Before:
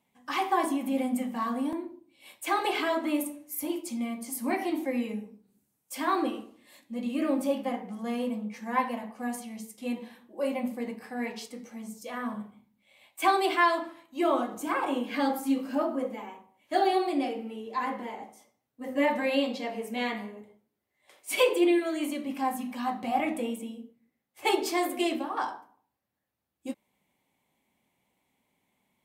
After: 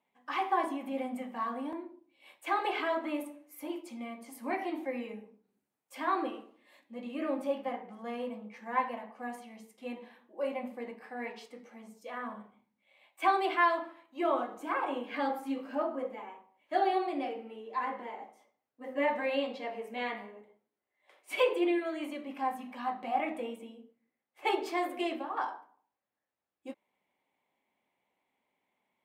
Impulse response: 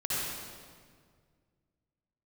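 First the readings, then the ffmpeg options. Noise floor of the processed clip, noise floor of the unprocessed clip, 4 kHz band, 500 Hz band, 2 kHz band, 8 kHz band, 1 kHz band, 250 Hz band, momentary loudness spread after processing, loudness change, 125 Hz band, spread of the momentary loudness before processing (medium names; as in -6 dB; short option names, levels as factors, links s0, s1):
under -85 dBFS, -79 dBFS, -7.5 dB, -4.0 dB, -3.5 dB, under -15 dB, -2.5 dB, -8.0 dB, 18 LU, -4.5 dB, no reading, 16 LU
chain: -af "bass=f=250:g=-14,treble=f=4000:g=-14,volume=0.75"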